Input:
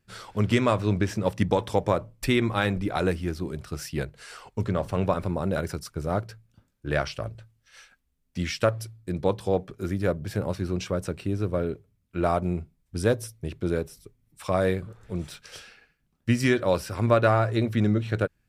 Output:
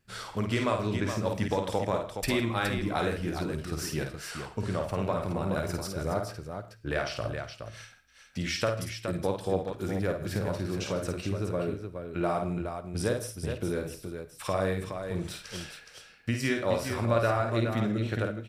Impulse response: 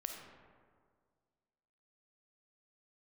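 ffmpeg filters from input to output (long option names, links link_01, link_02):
-filter_complex "[0:a]acompressor=threshold=-30dB:ratio=2,aecho=1:1:52|158|419:0.562|0.106|0.447,asplit=2[link_01][link_02];[1:a]atrim=start_sample=2205,atrim=end_sample=6174,lowshelf=frequency=280:gain=-11.5[link_03];[link_02][link_03]afir=irnorm=-1:irlink=0,volume=-0.5dB[link_04];[link_01][link_04]amix=inputs=2:normalize=0,volume=-3dB"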